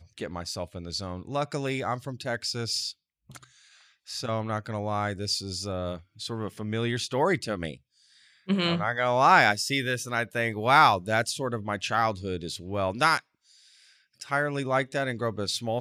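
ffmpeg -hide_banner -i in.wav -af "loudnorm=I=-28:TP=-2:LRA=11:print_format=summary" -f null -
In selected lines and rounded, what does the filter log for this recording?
Input Integrated:    -27.2 LUFS
Input True Peak:      -4.8 dBTP
Input LRA:             9.3 LU
Input Threshold:     -38.0 LUFS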